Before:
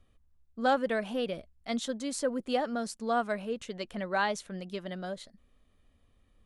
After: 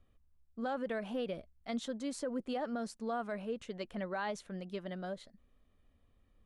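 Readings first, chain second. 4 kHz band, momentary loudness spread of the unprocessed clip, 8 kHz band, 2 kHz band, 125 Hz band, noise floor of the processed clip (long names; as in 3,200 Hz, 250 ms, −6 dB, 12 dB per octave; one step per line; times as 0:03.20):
−9.0 dB, 11 LU, −9.5 dB, −9.5 dB, −3.5 dB, −70 dBFS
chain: high-shelf EQ 3,200 Hz −7.5 dB
brickwall limiter −25.5 dBFS, peak gain reduction 9 dB
level −3 dB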